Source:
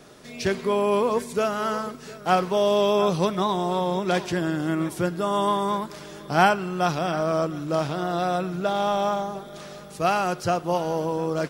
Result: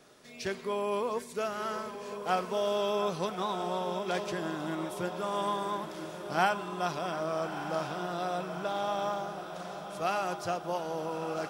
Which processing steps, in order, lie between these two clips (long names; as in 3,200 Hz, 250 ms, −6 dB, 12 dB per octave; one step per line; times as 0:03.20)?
low-shelf EQ 260 Hz −7.5 dB
feedback delay with all-pass diffusion 1,242 ms, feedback 59%, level −9 dB
level −8 dB